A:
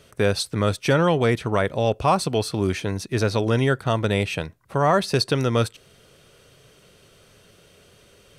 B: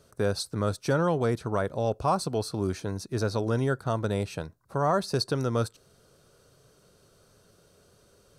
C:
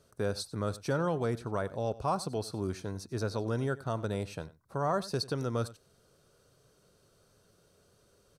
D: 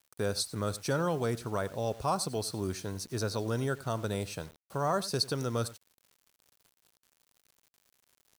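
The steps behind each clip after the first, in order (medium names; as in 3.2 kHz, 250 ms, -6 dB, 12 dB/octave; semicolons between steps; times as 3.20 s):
high-order bell 2.5 kHz -10 dB 1.1 oct; trim -6 dB
echo from a far wall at 16 m, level -18 dB; trim -5.5 dB
treble shelf 3.6 kHz +9.5 dB; bit crusher 9-bit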